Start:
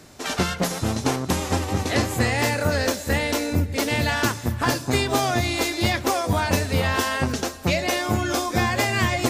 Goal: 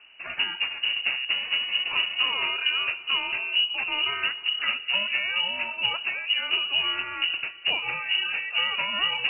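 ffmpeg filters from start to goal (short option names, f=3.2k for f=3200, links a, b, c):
-filter_complex "[0:a]lowshelf=f=430:g=6.5,lowpass=f=2.6k:t=q:w=0.5098,lowpass=f=2.6k:t=q:w=0.6013,lowpass=f=2.6k:t=q:w=0.9,lowpass=f=2.6k:t=q:w=2.563,afreqshift=-3000,asettb=1/sr,asplit=3[a][b][c];[a]atrim=end=5.744[d];[b]atrim=start=5.74:end=7.17,asetpts=PTS-STARTPTS,afade=t=in:d=0.004:c=qsin,afade=t=out:st=1.426:d=0.004:c=qsin,equalizer=f=2k:t=o:w=0.25:g=-7[e];[c]atrim=start=7.166[f];[d][e]acrossfade=d=0.004:c1=hsin:c2=qsin[g];[g][f]acrossfade=d=0.004:c1=qsin:c2=hsin,volume=-8dB"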